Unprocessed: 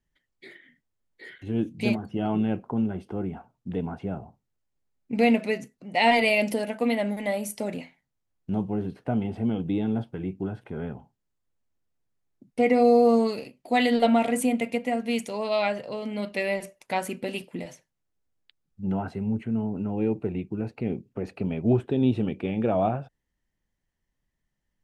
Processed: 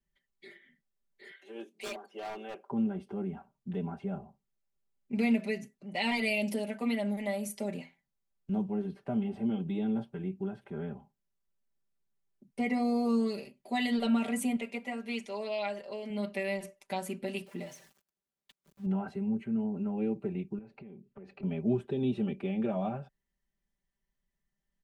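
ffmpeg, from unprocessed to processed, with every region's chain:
ffmpeg -i in.wav -filter_complex "[0:a]asettb=1/sr,asplit=3[link_01][link_02][link_03];[link_01]atrim=end=1.314[link_04];[link_02]atrim=start=1.31:end=2.7,asetpts=PTS-STARTPTS,afade=type=in:duration=0.004:curve=qsin,afade=type=out:start_time=1.386:duration=0.004:curve=qsin,highpass=frequency=420:width=0.5412,highpass=frequency=420:width=1.3066,aeval=exprs='0.0422*(abs(mod(val(0)/0.0422+3,4)-2)-1)':channel_layout=same[link_05];[link_03]atrim=start=2.696[link_06];[link_04][link_05]acrossfade=duration=0.004:curve1=hsin:curve2=qsin[link_07];[link_07][link_06]acrossfade=duration=0.004:curve1=qsin:curve2=hsin,asettb=1/sr,asplit=3[link_08][link_09][link_10];[link_08]atrim=end=14.564[link_11];[link_09]atrim=start=14.56:end=16.1,asetpts=PTS-STARTPTS,afade=type=in:duration=0.004:curve=qsin,afade=type=out:start_time=1.536:duration=0.004:curve=qsin,acrossover=split=5900[link_12][link_13];[link_13]acompressor=threshold=-58dB:ratio=4:attack=1:release=60[link_14];[link_12][link_14]amix=inputs=2:normalize=0,equalizer=frequency=140:width=1.2:gain=-13.5[link_15];[link_10]atrim=start=16.096[link_16];[link_11][link_15]acrossfade=duration=0.004:curve1=hsin:curve2=qsin[link_17];[link_17][link_16]acrossfade=duration=0.004:curve1=qsin:curve2=hsin,asettb=1/sr,asplit=3[link_18][link_19][link_20];[link_18]atrim=end=17.464[link_21];[link_19]atrim=start=17.46:end=18.86,asetpts=PTS-STARTPTS,afade=type=in:duration=0.004:curve=qsin,afade=type=out:start_time=1.396:duration=0.004:curve=qsin,aeval=exprs='val(0)+0.5*0.00422*sgn(val(0))':channel_layout=same,highpass=frequency=150:poles=1[link_22];[link_20]atrim=start=18.856[link_23];[link_21][link_22]acrossfade=duration=0.004:curve1=hsin:curve2=qsin[link_24];[link_24][link_23]acrossfade=duration=0.004:curve1=qsin:curve2=hsin,asettb=1/sr,asplit=3[link_25][link_26][link_27];[link_25]atrim=end=20.584[link_28];[link_26]atrim=start=20.58:end=21.43,asetpts=PTS-STARTPTS,afade=type=in:duration=0.004:curve=qsin,afade=type=out:start_time=0.846:duration=0.004:curve=qsin,lowpass=4300,acompressor=threshold=-40dB:ratio=6:attack=3.2:release=140:knee=1:detection=peak[link_29];[link_27]atrim=start=21.426[link_30];[link_28][link_29]acrossfade=duration=0.004:curve1=hsin:curve2=qsin[link_31];[link_31][link_30]acrossfade=duration=0.004:curve1=qsin:curve2=hsin,aecho=1:1:5.1:0.97,acrossover=split=280|3000[link_32][link_33][link_34];[link_33]acompressor=threshold=-25dB:ratio=2.5[link_35];[link_32][link_35][link_34]amix=inputs=3:normalize=0,volume=-8.5dB" out.wav

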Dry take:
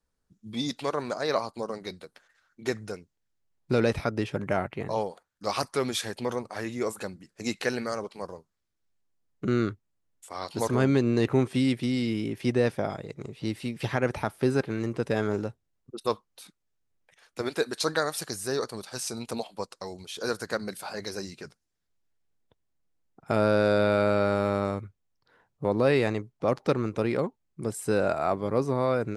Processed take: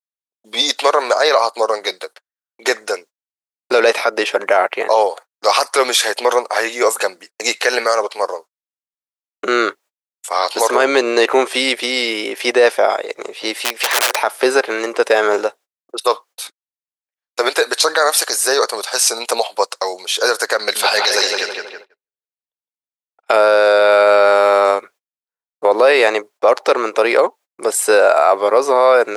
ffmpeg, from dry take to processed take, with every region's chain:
ffmpeg -i in.wav -filter_complex "[0:a]asettb=1/sr,asplit=3[link_01][link_02][link_03];[link_01]atrim=end=13.574[link_04];[link_02]atrim=start=13.57:end=14.21,asetpts=PTS-STARTPTS,afade=type=in:duration=0.004:curve=qsin,afade=type=out:start_time=0.636:duration=0.004:curve=qsin,highpass=280,aeval=exprs='(mod(23.7*val(0)+1,2)-1)/23.7':channel_layout=same[link_05];[link_03]atrim=start=14.206[link_06];[link_04][link_05]acrossfade=duration=0.004:curve1=hsin:curve2=qsin[link_07];[link_07][link_06]acrossfade=duration=0.004:curve1=qsin:curve2=hsin,asettb=1/sr,asplit=3[link_08][link_09][link_10];[link_08]atrim=end=20.594[link_11];[link_09]atrim=start=20.59:end=23.33,asetpts=PTS-STARTPTS,afade=type=in:duration=0.004:curve=qsin,afade=type=out:start_time=2.736:duration=0.004:curve=qsin,equalizer=frequency=3200:width=1.1:gain=10.5,asplit=2[link_12][link_13];[link_13]adelay=161,lowpass=frequency=3200:poles=1,volume=-3.5dB,asplit=2[link_14][link_15];[link_15]adelay=161,lowpass=frequency=3200:poles=1,volume=0.5,asplit=2[link_16][link_17];[link_17]adelay=161,lowpass=frequency=3200:poles=1,volume=0.5,asplit=2[link_18][link_19];[link_19]adelay=161,lowpass=frequency=3200:poles=1,volume=0.5,asplit=2[link_20][link_21];[link_21]adelay=161,lowpass=frequency=3200:poles=1,volume=0.5,asplit=2[link_22][link_23];[link_23]adelay=161,lowpass=frequency=3200:poles=1,volume=0.5,asplit=2[link_24][link_25];[link_25]adelay=161,lowpass=frequency=3200:poles=1,volume=0.5[link_26];[link_12][link_14][link_16][link_18][link_20][link_22][link_24][link_26]amix=inputs=8:normalize=0,atrim=end_sample=120834[link_27];[link_10]atrim=start=23.326[link_28];[link_11][link_27]acrossfade=duration=0.004:curve1=hsin:curve2=qsin[link_29];[link_29][link_28]acrossfade=duration=0.004:curve1=qsin:curve2=hsin,agate=range=-55dB:threshold=-50dB:ratio=16:detection=peak,highpass=frequency=490:width=0.5412,highpass=frequency=490:width=1.3066,alimiter=level_in=21.5dB:limit=-1dB:release=50:level=0:latency=1,volume=-1.5dB" out.wav

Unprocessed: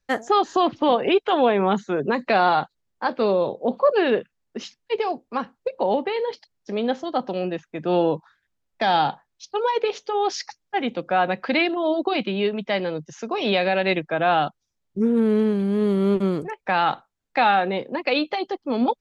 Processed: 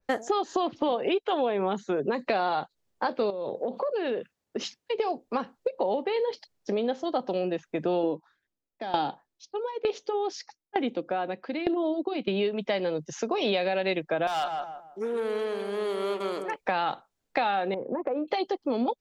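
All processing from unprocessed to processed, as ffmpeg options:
ffmpeg -i in.wav -filter_complex "[0:a]asettb=1/sr,asplit=3[link_01][link_02][link_03];[link_01]atrim=end=3.304[link_04];[link_02]atrim=start=3.3:end=5,asetpts=PTS-STARTPTS,afade=type=in:duration=0.004:curve=qsin,afade=type=out:start_time=1.696:duration=0.004:curve=qsin,highpass=55,acompressor=threshold=-29dB:ratio=5:attack=3.2:release=140:knee=1:detection=peak[link_05];[link_03]atrim=start=4.996[link_06];[link_04][link_05]acrossfade=duration=0.004:curve1=hsin:curve2=qsin[link_07];[link_07][link_06]acrossfade=duration=0.004:curve1=qsin:curve2=hsin,asettb=1/sr,asplit=3[link_08][link_09][link_10];[link_08]atrim=end=8.034[link_11];[link_09]atrim=start=8.03:end=12.28,asetpts=PTS-STARTPTS,afade=type=in:duration=0.004:curve=qsin,afade=type=out:start_time=4.246:duration=0.004:curve=qsin,equalizer=frequency=300:width_type=o:width=0.83:gain=7,aeval=exprs='val(0)*pow(10,-21*if(lt(mod(1.1*n/s,1),2*abs(1.1)/1000),1-mod(1.1*n/s,1)/(2*abs(1.1)/1000),(mod(1.1*n/s,1)-2*abs(1.1)/1000)/(1-2*abs(1.1)/1000))/20)':channel_layout=same[link_12];[link_10]atrim=start=12.276[link_13];[link_11][link_12]acrossfade=duration=0.004:curve1=hsin:curve2=qsin[link_14];[link_14][link_13]acrossfade=duration=0.004:curve1=qsin:curve2=hsin,asettb=1/sr,asplit=3[link_15][link_16][link_17];[link_15]atrim=end=14.274[link_18];[link_16]atrim=start=14.27:end=16.56,asetpts=PTS-STARTPTS,afade=type=in:duration=0.004:curve=qsin,afade=type=out:start_time=2.286:duration=0.004:curve=qsin,highpass=800,asoftclip=type=hard:threshold=-21dB,asplit=2[link_19][link_20];[link_20]adelay=161,lowpass=frequency=1300:poles=1,volume=-7dB,asplit=2[link_21][link_22];[link_22]adelay=161,lowpass=frequency=1300:poles=1,volume=0.35,asplit=2[link_23][link_24];[link_24]adelay=161,lowpass=frequency=1300:poles=1,volume=0.35,asplit=2[link_25][link_26];[link_26]adelay=161,lowpass=frequency=1300:poles=1,volume=0.35[link_27];[link_19][link_21][link_23][link_25][link_27]amix=inputs=5:normalize=0,atrim=end_sample=100989[link_28];[link_17]atrim=start=16.556[link_29];[link_18][link_28]acrossfade=duration=0.004:curve1=hsin:curve2=qsin[link_30];[link_30][link_29]acrossfade=duration=0.004:curve1=qsin:curve2=hsin,asettb=1/sr,asplit=3[link_31][link_32][link_33];[link_31]atrim=end=17.744[link_34];[link_32]atrim=start=17.74:end=18.28,asetpts=PTS-STARTPTS,afade=type=in:duration=0.004:curve=qsin,afade=type=out:start_time=0.536:duration=0.004:curve=qsin,lowpass=frequency=1300:width=0.5412,lowpass=frequency=1300:width=1.3066,acompressor=threshold=-28dB:ratio=5:attack=3.2:release=140:knee=1:detection=peak[link_35];[link_33]atrim=start=18.276[link_36];[link_34][link_35]acrossfade=duration=0.004:curve1=hsin:curve2=qsin[link_37];[link_37][link_36]acrossfade=duration=0.004:curve1=qsin:curve2=hsin,equalizer=frequency=490:width=0.66:gain=6.5,acompressor=threshold=-26dB:ratio=4,adynamicequalizer=threshold=0.01:dfrequency=2500:dqfactor=0.7:tfrequency=2500:tqfactor=0.7:attack=5:release=100:ratio=0.375:range=3:mode=boostabove:tftype=highshelf" out.wav

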